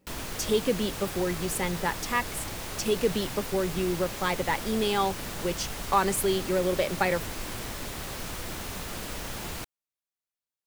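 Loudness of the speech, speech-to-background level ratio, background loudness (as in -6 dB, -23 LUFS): -29.0 LUFS, 6.5 dB, -35.5 LUFS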